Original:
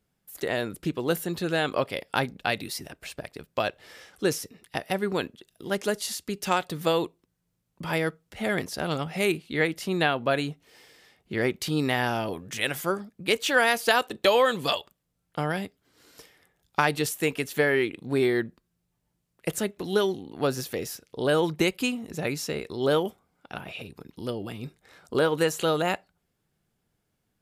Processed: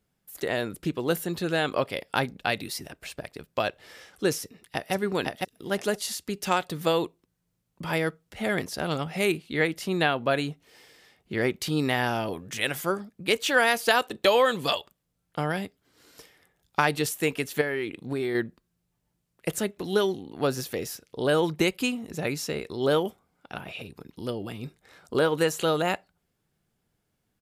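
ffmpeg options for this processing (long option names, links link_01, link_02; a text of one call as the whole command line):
ffmpeg -i in.wav -filter_complex "[0:a]asplit=2[link_01][link_02];[link_02]afade=type=in:start_time=4.41:duration=0.01,afade=type=out:start_time=4.93:duration=0.01,aecho=0:1:510|1020|1530:0.841395|0.126209|0.0189314[link_03];[link_01][link_03]amix=inputs=2:normalize=0,asettb=1/sr,asplit=3[link_04][link_05][link_06];[link_04]atrim=end=17.614[link_07];[link_05]atrim=start=17.61:end=18.35,asetpts=PTS-STARTPTS,afade=type=in:duration=0.004:curve=qsin,afade=type=out:start_time=0.736:duration=0.004:curve=qsin,acompressor=threshold=-25dB:ratio=5:attack=3.2:release=140:knee=1:detection=peak[link_08];[link_06]atrim=start=18.346[link_09];[link_07][link_08]acrossfade=duration=0.004:curve1=hsin:curve2=qsin[link_10];[link_10][link_09]acrossfade=duration=0.004:curve1=qsin:curve2=hsin" out.wav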